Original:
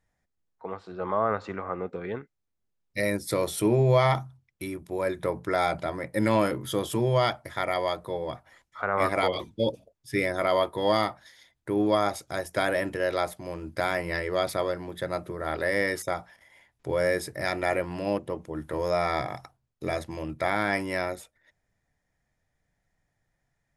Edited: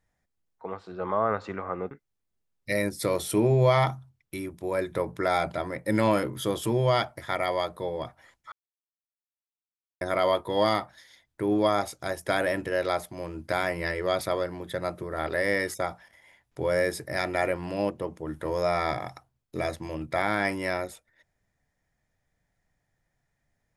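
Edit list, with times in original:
1.91–2.19 s: delete
8.80–10.29 s: mute

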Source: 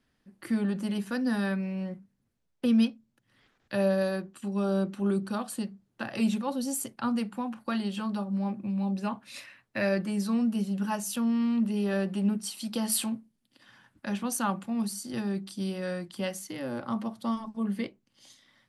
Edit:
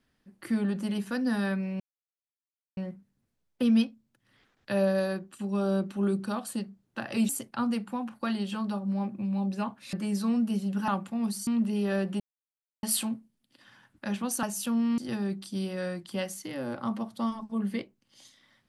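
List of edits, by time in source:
1.80 s: insert silence 0.97 s
6.32–6.74 s: delete
9.38–9.98 s: delete
10.93–11.48 s: swap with 14.44–15.03 s
12.21–12.84 s: mute

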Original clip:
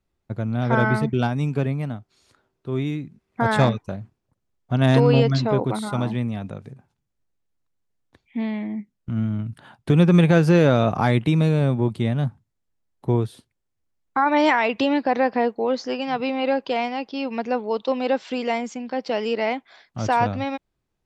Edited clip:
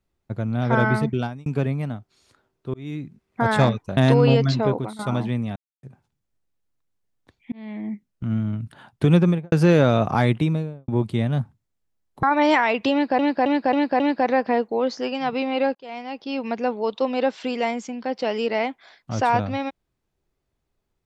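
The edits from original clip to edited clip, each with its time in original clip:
1.08–1.46 s: fade out
2.74–3.03 s: fade in
3.97–4.83 s: delete
5.53–5.85 s: fade out, to -14.5 dB
6.42–6.69 s: mute
8.38–8.75 s: fade in
10.00–10.38 s: studio fade out
11.15–11.74 s: studio fade out
13.09–14.18 s: delete
14.87–15.14 s: loop, 5 plays
16.62–17.22 s: fade in

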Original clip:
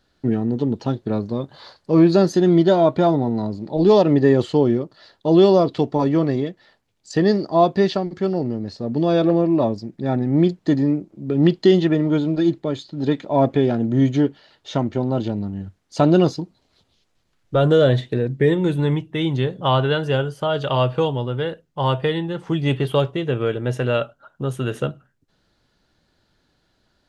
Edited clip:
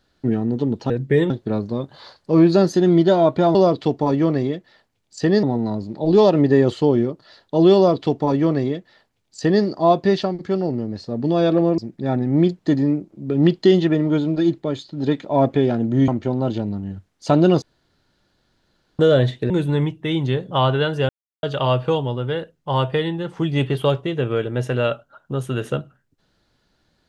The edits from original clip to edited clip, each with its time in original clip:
5.48–7.36 s: copy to 3.15 s
9.50–9.78 s: delete
14.08–14.78 s: delete
16.32–17.69 s: room tone
18.20–18.60 s: move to 0.90 s
20.19–20.53 s: mute

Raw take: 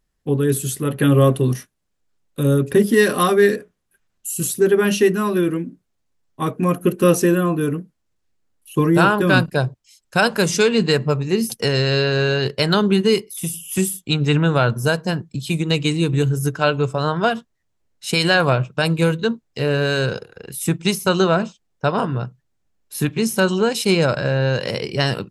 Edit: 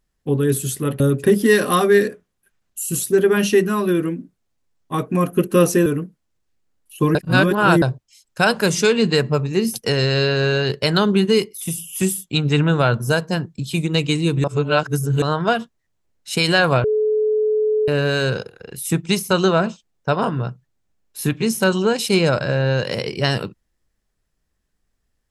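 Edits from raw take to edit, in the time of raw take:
1.00–2.48 s: delete
7.34–7.62 s: delete
8.91–9.58 s: reverse
16.20–16.98 s: reverse
18.60–19.64 s: bleep 429 Hz -15 dBFS

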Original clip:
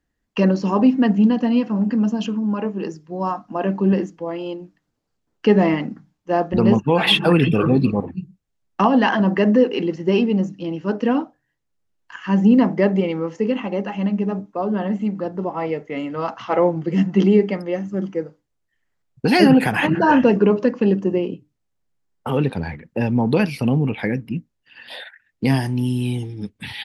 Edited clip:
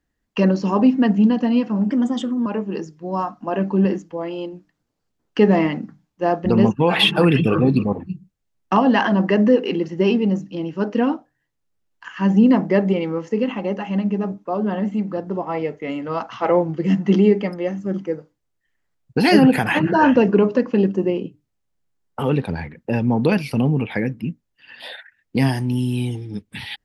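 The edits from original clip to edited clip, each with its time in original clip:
1.91–2.54 s: speed 114%

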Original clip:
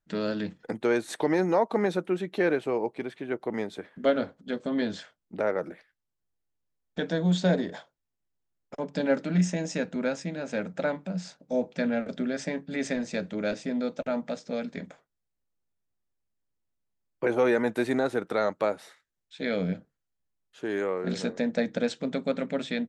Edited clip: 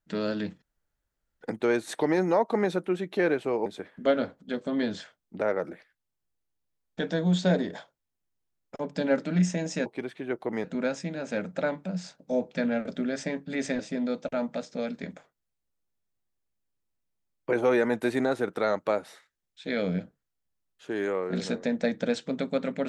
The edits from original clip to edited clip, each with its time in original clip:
0.62 s: insert room tone 0.79 s
2.87–3.65 s: move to 9.85 s
13.00–13.53 s: delete

